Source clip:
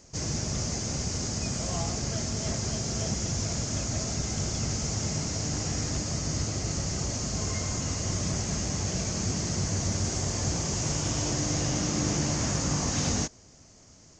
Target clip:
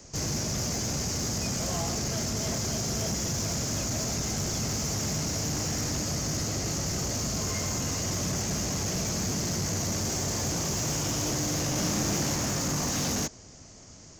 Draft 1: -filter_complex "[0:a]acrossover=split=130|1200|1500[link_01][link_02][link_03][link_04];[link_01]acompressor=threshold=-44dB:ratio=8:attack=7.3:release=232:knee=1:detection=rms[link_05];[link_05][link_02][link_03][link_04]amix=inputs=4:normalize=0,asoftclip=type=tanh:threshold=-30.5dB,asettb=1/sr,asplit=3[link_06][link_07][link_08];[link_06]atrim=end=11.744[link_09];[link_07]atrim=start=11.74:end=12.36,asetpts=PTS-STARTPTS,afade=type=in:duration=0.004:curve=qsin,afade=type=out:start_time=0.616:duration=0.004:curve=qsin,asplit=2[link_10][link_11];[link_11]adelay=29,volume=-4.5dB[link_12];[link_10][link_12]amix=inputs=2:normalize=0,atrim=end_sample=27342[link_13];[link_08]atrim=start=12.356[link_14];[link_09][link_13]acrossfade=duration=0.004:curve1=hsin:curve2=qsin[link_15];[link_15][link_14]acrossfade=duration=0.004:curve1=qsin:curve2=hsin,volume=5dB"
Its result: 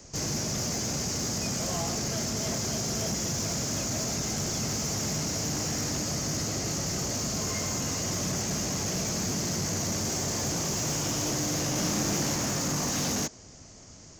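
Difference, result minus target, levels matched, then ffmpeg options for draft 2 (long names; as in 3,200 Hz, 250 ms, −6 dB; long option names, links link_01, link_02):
downward compressor: peak gain reduction +6.5 dB
-filter_complex "[0:a]acrossover=split=130|1200|1500[link_01][link_02][link_03][link_04];[link_01]acompressor=threshold=-36.5dB:ratio=8:attack=7.3:release=232:knee=1:detection=rms[link_05];[link_05][link_02][link_03][link_04]amix=inputs=4:normalize=0,asoftclip=type=tanh:threshold=-30.5dB,asettb=1/sr,asplit=3[link_06][link_07][link_08];[link_06]atrim=end=11.744[link_09];[link_07]atrim=start=11.74:end=12.36,asetpts=PTS-STARTPTS,afade=type=in:duration=0.004:curve=qsin,afade=type=out:start_time=0.616:duration=0.004:curve=qsin,asplit=2[link_10][link_11];[link_11]adelay=29,volume=-4.5dB[link_12];[link_10][link_12]amix=inputs=2:normalize=0,atrim=end_sample=27342[link_13];[link_08]atrim=start=12.356[link_14];[link_09][link_13]acrossfade=duration=0.004:curve1=hsin:curve2=qsin[link_15];[link_15][link_14]acrossfade=duration=0.004:curve1=qsin:curve2=hsin,volume=5dB"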